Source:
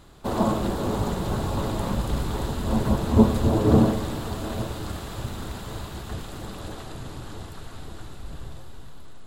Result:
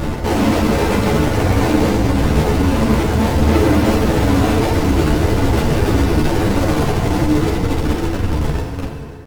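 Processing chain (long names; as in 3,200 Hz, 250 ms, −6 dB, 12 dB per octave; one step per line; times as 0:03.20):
running median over 41 samples
reverb reduction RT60 0.56 s
reversed playback
downward compressor 6 to 1, threshold −35 dBFS, peak gain reduction 22 dB
reversed playback
fuzz pedal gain 62 dB, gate −56 dBFS
pitch vibrato 3.9 Hz 7 cents
on a send: single-tap delay 535 ms −18.5 dB
on the sum: feedback delay network reverb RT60 2.3 s, low-frequency decay 0.9×, high-frequency decay 0.7×, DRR 0.5 dB
string-ensemble chorus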